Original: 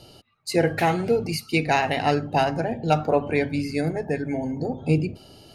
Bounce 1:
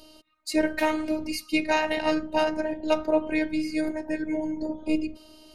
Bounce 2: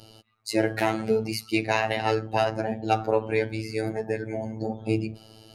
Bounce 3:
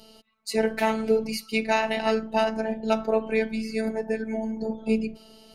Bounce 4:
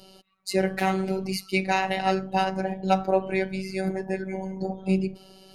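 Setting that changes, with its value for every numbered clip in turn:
robot voice, frequency: 310 Hz, 110 Hz, 220 Hz, 190 Hz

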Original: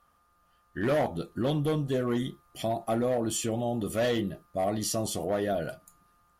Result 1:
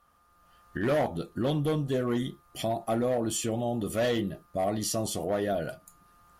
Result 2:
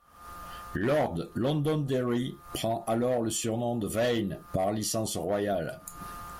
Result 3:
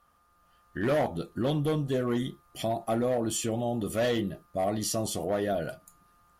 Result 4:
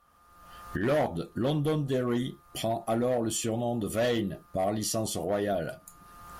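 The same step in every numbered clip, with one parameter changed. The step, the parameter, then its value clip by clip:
recorder AGC, rising by: 12 dB/s, 85 dB/s, 5.1 dB/s, 33 dB/s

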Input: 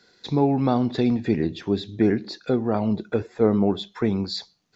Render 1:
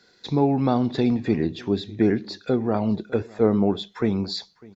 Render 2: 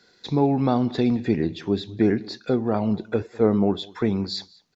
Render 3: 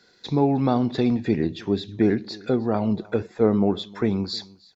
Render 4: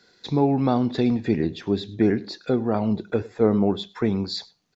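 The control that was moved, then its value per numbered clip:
delay, time: 601 ms, 198 ms, 311 ms, 101 ms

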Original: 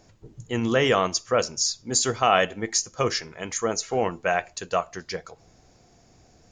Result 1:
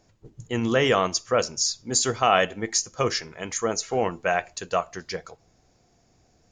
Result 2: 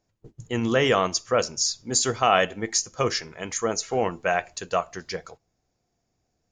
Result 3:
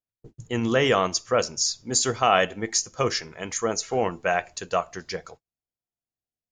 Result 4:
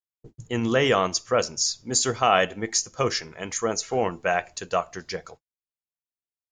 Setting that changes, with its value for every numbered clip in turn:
gate, range: -6 dB, -19 dB, -44 dB, -58 dB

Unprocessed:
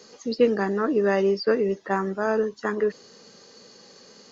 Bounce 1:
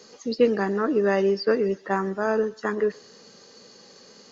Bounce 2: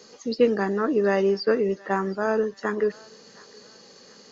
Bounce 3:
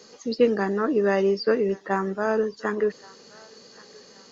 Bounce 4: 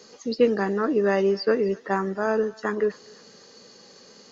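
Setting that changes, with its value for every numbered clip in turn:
thinning echo, time: 128 ms, 722 ms, 1124 ms, 255 ms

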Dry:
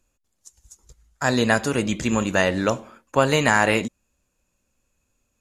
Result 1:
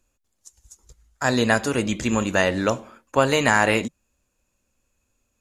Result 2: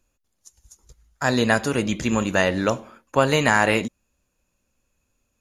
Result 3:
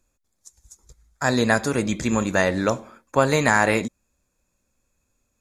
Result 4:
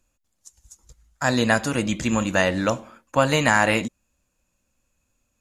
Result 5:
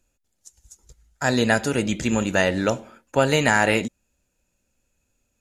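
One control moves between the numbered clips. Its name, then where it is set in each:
band-stop, frequency: 160 Hz, 7.9 kHz, 2.9 kHz, 410 Hz, 1.1 kHz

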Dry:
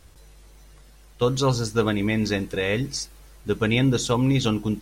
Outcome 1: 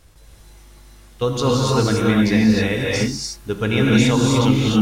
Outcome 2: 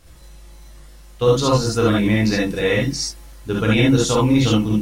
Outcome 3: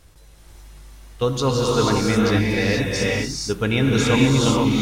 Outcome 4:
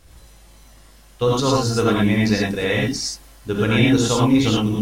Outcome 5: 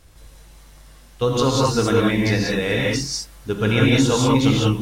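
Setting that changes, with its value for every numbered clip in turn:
gated-style reverb, gate: 330 ms, 90 ms, 510 ms, 130 ms, 220 ms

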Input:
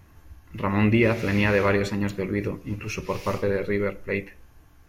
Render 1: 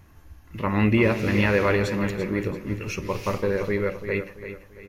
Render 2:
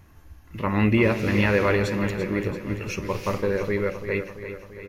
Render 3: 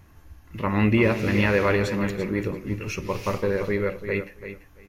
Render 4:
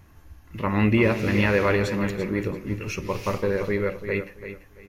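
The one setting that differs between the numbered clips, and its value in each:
feedback delay, feedback: 38%, 59%, 17%, 25%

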